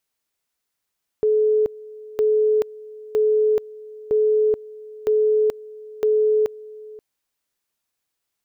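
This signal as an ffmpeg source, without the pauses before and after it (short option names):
-f lavfi -i "aevalsrc='pow(10,(-14.5-21*gte(mod(t,0.96),0.43))/20)*sin(2*PI*429*t)':d=5.76:s=44100"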